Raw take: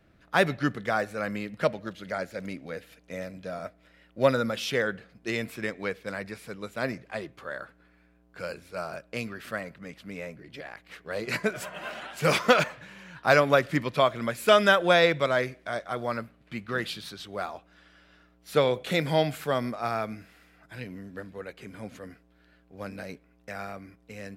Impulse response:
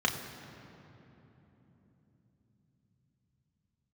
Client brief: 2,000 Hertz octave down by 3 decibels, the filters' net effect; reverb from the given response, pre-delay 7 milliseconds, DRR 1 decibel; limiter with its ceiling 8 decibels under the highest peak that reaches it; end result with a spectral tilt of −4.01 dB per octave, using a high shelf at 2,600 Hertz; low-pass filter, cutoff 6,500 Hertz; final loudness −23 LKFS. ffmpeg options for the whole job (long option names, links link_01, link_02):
-filter_complex "[0:a]lowpass=6500,equalizer=frequency=2000:width_type=o:gain=-6,highshelf=frequency=2600:gain=4.5,alimiter=limit=-14dB:level=0:latency=1,asplit=2[link_01][link_02];[1:a]atrim=start_sample=2205,adelay=7[link_03];[link_02][link_03]afir=irnorm=-1:irlink=0,volume=-11dB[link_04];[link_01][link_04]amix=inputs=2:normalize=0,volume=5.5dB"